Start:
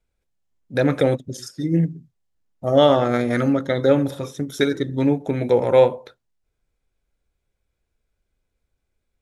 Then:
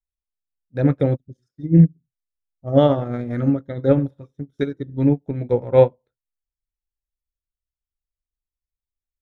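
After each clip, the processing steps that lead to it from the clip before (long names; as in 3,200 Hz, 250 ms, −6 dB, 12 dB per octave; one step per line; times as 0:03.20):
RIAA equalisation playback
expander for the loud parts 2.5 to 1, over −29 dBFS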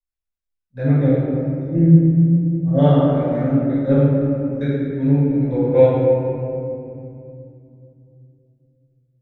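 convolution reverb RT60 2.7 s, pre-delay 5 ms, DRR −12.5 dB
level −16 dB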